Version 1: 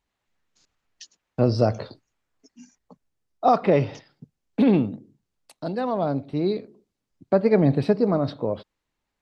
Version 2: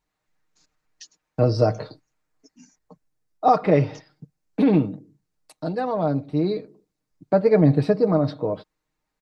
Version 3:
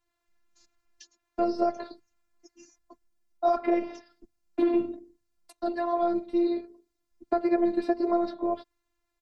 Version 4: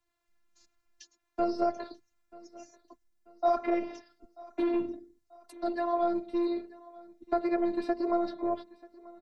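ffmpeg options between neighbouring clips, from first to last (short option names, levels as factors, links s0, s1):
-af "equalizer=f=3100:t=o:w=0.52:g=-5.5,aecho=1:1:6.5:0.58"
-filter_complex "[0:a]afftfilt=real='hypot(re,im)*cos(PI*b)':imag='0':win_size=512:overlap=0.75,acrossover=split=180|2000[s0][s1][s2];[s0]acompressor=threshold=0.00398:ratio=4[s3];[s1]acompressor=threshold=0.0631:ratio=4[s4];[s2]acompressor=threshold=0.00224:ratio=4[s5];[s3][s4][s5]amix=inputs=3:normalize=0,volume=1.33"
-filter_complex "[0:a]acrossover=split=120|550[s0][s1][s2];[s1]asoftclip=type=tanh:threshold=0.0562[s3];[s0][s3][s2]amix=inputs=3:normalize=0,aecho=1:1:937|1874|2811:0.0794|0.0342|0.0147,volume=0.841"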